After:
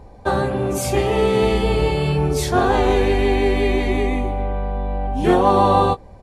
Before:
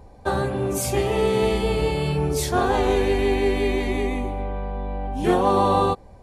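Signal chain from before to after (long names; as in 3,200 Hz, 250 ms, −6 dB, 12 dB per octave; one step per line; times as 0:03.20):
high-shelf EQ 7,000 Hz −7 dB
double-tracking delay 19 ms −12.5 dB
level +4 dB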